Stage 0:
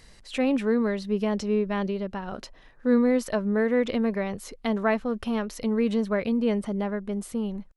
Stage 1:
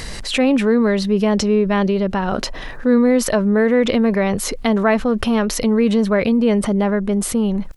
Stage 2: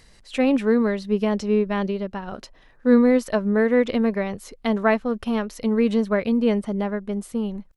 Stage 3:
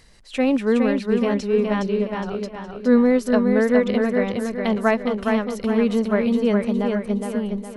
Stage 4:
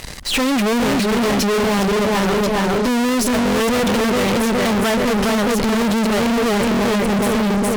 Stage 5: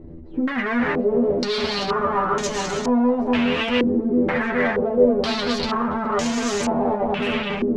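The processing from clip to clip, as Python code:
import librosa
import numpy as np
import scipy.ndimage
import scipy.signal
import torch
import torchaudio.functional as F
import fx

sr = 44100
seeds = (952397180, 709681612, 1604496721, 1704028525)

y1 = fx.env_flatten(x, sr, amount_pct=50)
y1 = F.gain(torch.from_numpy(y1), 6.0).numpy()
y2 = fx.upward_expand(y1, sr, threshold_db=-27.0, expansion=2.5)
y3 = fx.echo_feedback(y2, sr, ms=414, feedback_pct=40, wet_db=-4.5)
y4 = fx.fuzz(y3, sr, gain_db=44.0, gate_db=-52.0)
y4 = F.gain(torch.from_numpy(y4), -3.0).numpy()
y5 = y4 + 0.5 * 10.0 ** (-30.5 / 20.0) * np.sign(y4)
y5 = fx.stiff_resonator(y5, sr, f0_hz=80.0, decay_s=0.24, stiffness=0.002)
y5 = fx.filter_held_lowpass(y5, sr, hz=2.1, low_hz=330.0, high_hz=6600.0)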